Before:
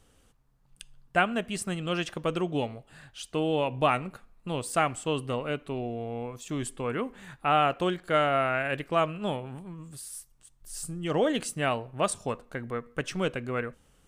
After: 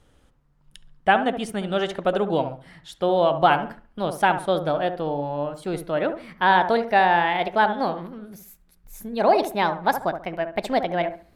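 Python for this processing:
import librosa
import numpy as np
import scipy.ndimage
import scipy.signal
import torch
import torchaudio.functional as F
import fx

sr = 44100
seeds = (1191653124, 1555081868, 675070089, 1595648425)

y = fx.speed_glide(x, sr, from_pct=106, to_pct=142)
y = fx.high_shelf(y, sr, hz=5900.0, db=-11.0)
y = fx.echo_wet_lowpass(y, sr, ms=69, feedback_pct=31, hz=1500.0, wet_db=-8.5)
y = fx.dynamic_eq(y, sr, hz=660.0, q=1.2, threshold_db=-40.0, ratio=4.0, max_db=6)
y = y * librosa.db_to_amplitude(3.5)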